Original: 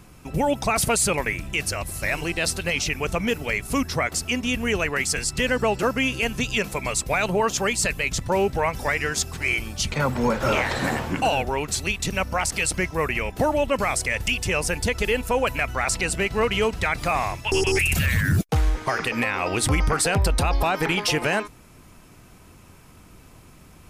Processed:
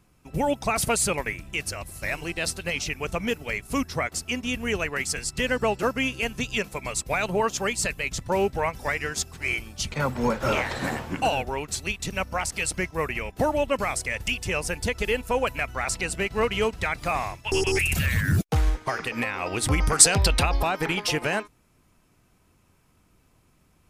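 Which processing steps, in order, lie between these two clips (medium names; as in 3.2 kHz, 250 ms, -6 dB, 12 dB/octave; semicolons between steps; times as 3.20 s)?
19.86–20.44 s: peaking EQ 11 kHz -> 2.2 kHz +10.5 dB 1.4 oct; upward expansion 1.5:1, over -43 dBFS; trim +2 dB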